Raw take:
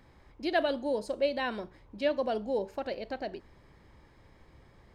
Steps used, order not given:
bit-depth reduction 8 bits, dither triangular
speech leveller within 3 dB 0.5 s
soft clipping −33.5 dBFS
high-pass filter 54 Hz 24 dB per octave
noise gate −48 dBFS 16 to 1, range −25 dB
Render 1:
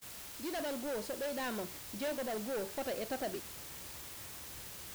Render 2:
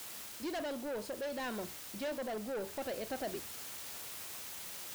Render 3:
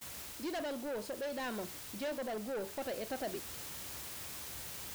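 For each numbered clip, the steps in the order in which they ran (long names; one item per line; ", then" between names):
high-pass filter, then soft clipping, then speech leveller, then bit-depth reduction, then noise gate
noise gate, then bit-depth reduction, then high-pass filter, then soft clipping, then speech leveller
bit-depth reduction, then high-pass filter, then soft clipping, then speech leveller, then noise gate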